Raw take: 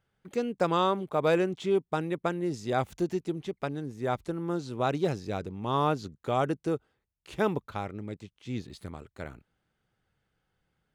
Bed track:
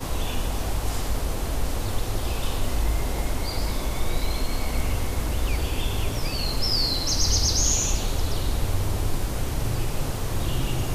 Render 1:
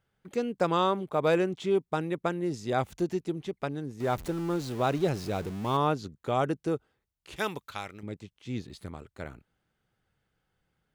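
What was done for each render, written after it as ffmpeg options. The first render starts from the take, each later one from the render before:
-filter_complex "[0:a]asettb=1/sr,asplit=3[a][b][c];[a]atrim=end=4.004[d];[b]atrim=start=4:end=5.77,asetpts=PTS-STARTPTS,afade=t=in:d=0.004:c=qsin,afade=t=out:st=1.766:d=0.004:c=qsin,aeval=exprs='val(0)+0.5*0.0126*sgn(val(0))':c=same[e];[c]atrim=start=5.766[f];[d][e]acrossfade=d=0.004:c1=hsin:c2=qsin[g];[g][f]acrossfade=d=0.004:c1=qsin:c2=hsin,asettb=1/sr,asplit=3[h][i][j];[h]atrim=end=7.364[k];[i]atrim=start=7.36:end=8.03,asetpts=PTS-STARTPTS,afade=t=in:d=0.004:c=qsin,afade=t=out:st=0.666:d=0.004:c=qsin,tiltshelf=f=1.3k:g=-9[l];[j]atrim=start=8.026[m];[k][l]acrossfade=d=0.004:c1=hsin:c2=qsin[n];[n][m]acrossfade=d=0.004:c1=qsin:c2=hsin"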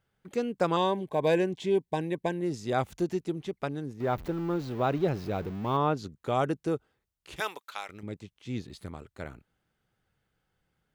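-filter_complex "[0:a]asettb=1/sr,asplit=3[a][b][c];[a]atrim=end=0.764[d];[b]atrim=start=0.76:end=2.41,asetpts=PTS-STARTPTS,afade=t=in:d=0.004:c=qsin,afade=t=out:st=1.646:d=0.004:c=qsin,asuperstop=centerf=1300:order=12:qfactor=3.5[e];[c]atrim=start=2.406[f];[d][e]acrossfade=d=0.004:c1=hsin:c2=qsin[g];[g][f]acrossfade=d=0.004:c1=qsin:c2=hsin,asettb=1/sr,asplit=3[h][i][j];[h]atrim=end=3.934[k];[i]atrim=start=3.93:end=5.97,asetpts=PTS-STARTPTS,afade=t=in:d=0.004:c=qsin,afade=t=out:st=2.036:d=0.004:c=qsin,equalizer=f=8.8k:t=o:w=1.6:g=-13.5[l];[j]atrim=start=5.966[m];[k][l]acrossfade=d=0.004:c1=hsin:c2=qsin[n];[n][m]acrossfade=d=0.004:c1=qsin:c2=hsin,asettb=1/sr,asplit=3[o][p][q];[o]atrim=end=7.404[r];[p]atrim=start=7.4:end=7.89,asetpts=PTS-STARTPTS,afade=t=in:d=0.004:c=qsin,afade=t=out:st=0.486:d=0.004:c=qsin,highpass=550[s];[q]atrim=start=7.886[t];[r][s]acrossfade=d=0.004:c1=hsin:c2=qsin[u];[u][t]acrossfade=d=0.004:c1=qsin:c2=hsin"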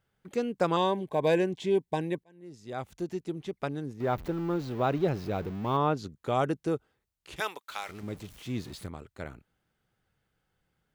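-filter_complex "[0:a]asettb=1/sr,asplit=3[a][b][c];[a]atrim=end=7.694[d];[b]atrim=start=7.69:end=8.87,asetpts=PTS-STARTPTS,afade=t=in:d=0.004:c=qsin,afade=t=out:st=1.176:d=0.004:c=qsin,aeval=exprs='val(0)+0.5*0.00531*sgn(val(0))':c=same[e];[c]atrim=start=8.866[f];[d][e]acrossfade=d=0.004:c1=hsin:c2=qsin[g];[g][f]acrossfade=d=0.004:c1=qsin:c2=hsin,asplit=2[h][i];[h]atrim=end=2.24,asetpts=PTS-STARTPTS,afade=t=out:st=2.236:d=0.004:c=hsin[j];[i]atrim=start=2.24,asetpts=PTS-STARTPTS,afade=t=in:d=1.44[k];[j][k]concat=n=2:v=0:a=1"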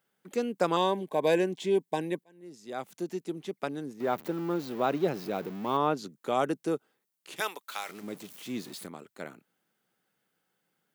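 -af "highpass=f=180:w=0.5412,highpass=f=180:w=1.3066,highshelf=f=8.1k:g=9.5"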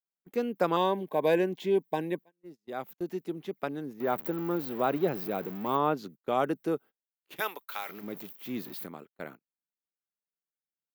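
-af "agate=range=-29dB:threshold=-46dB:ratio=16:detection=peak,firequalizer=gain_entry='entry(1700,0);entry(8200,-12);entry(15000,11)':delay=0.05:min_phase=1"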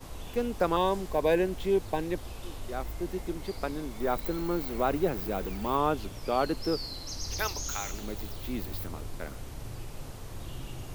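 -filter_complex "[1:a]volume=-14.5dB[a];[0:a][a]amix=inputs=2:normalize=0"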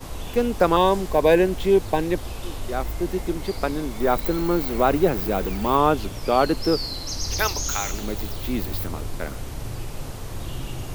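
-af "volume=8.5dB"

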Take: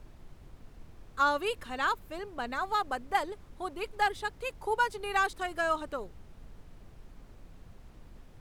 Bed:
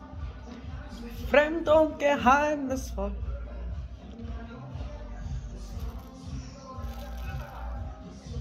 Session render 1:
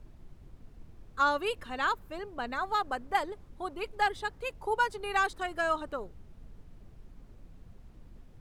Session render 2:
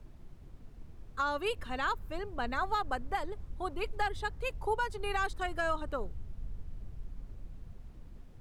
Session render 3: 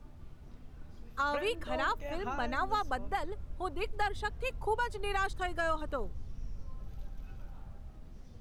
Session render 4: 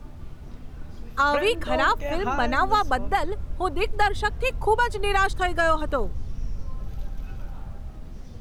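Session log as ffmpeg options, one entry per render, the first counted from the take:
-af "afftdn=nr=6:nf=-54"
-filter_complex "[0:a]acrossover=split=120[a][b];[a]dynaudnorm=f=350:g=9:m=10dB[c];[b]alimiter=limit=-22.5dB:level=0:latency=1:release=230[d];[c][d]amix=inputs=2:normalize=0"
-filter_complex "[1:a]volume=-18.5dB[a];[0:a][a]amix=inputs=2:normalize=0"
-af "volume=11dB"

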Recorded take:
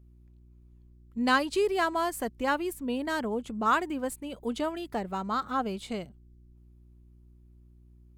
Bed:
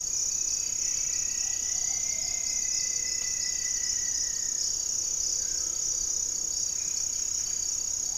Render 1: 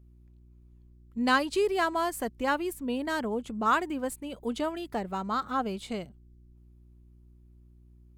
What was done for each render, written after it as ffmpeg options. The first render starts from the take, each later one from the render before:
-af anull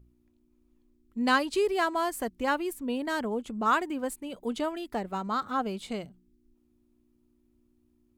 -af "bandreject=f=60:t=h:w=4,bandreject=f=120:t=h:w=4,bandreject=f=180:t=h:w=4"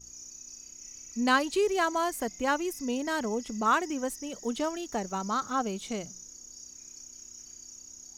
-filter_complex "[1:a]volume=-17.5dB[a];[0:a][a]amix=inputs=2:normalize=0"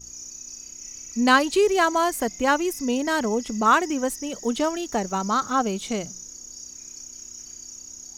-af "volume=7dB"

